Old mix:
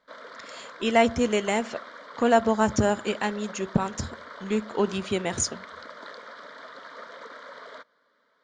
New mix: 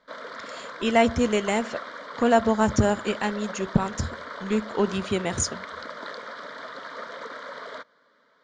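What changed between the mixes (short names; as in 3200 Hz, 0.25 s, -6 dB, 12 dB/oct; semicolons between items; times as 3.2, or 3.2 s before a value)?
background +5.0 dB; master: add low shelf 120 Hz +8 dB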